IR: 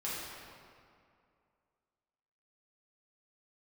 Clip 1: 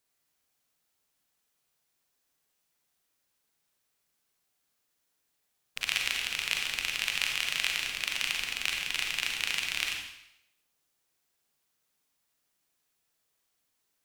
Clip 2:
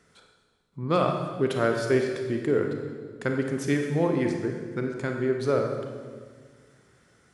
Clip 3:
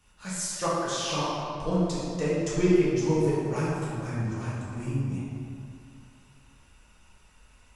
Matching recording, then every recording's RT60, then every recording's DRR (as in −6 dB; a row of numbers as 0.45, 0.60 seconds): 3; 0.80, 1.7, 2.4 seconds; 1.0, 3.0, −9.0 decibels